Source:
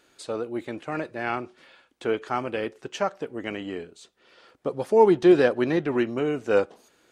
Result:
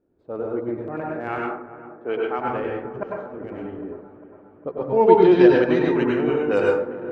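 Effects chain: 1.28–2.39 HPF 250 Hz 12 dB/oct; low-pass opened by the level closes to 360 Hz, open at -16.5 dBFS; 4.84–5.73 LPF 3700 Hz -> 7000 Hz 24 dB/oct; transient shaper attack -2 dB, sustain -8 dB; 3.03–3.81 negative-ratio compressor -39 dBFS, ratio -1; on a send: dark delay 0.402 s, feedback 62%, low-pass 1500 Hz, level -14 dB; on the sum: plate-style reverb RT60 0.61 s, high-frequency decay 0.5×, pre-delay 85 ms, DRR -2.5 dB

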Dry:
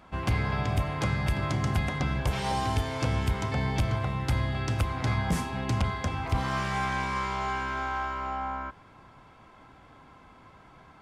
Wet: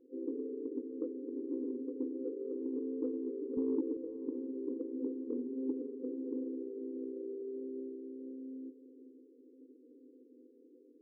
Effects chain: FFT band-pass 240–520 Hz; 3.57–3.97 tilt -3 dB/oct; soft clip -22 dBFS, distortion -30 dB; diffused feedback echo 0.562 s, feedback 45%, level -14 dB; gain +1.5 dB

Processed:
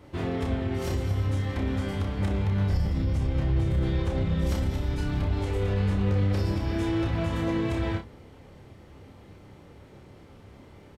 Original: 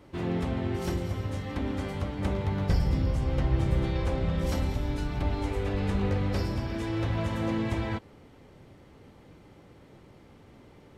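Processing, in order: bell 81 Hz +8.5 dB 0.43 oct; de-hum 58.74 Hz, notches 5; limiter -22 dBFS, peak gain reduction 10 dB; on a send: early reflections 30 ms -4.5 dB, 60 ms -14 dB; on the sum: gain +1.5 dB

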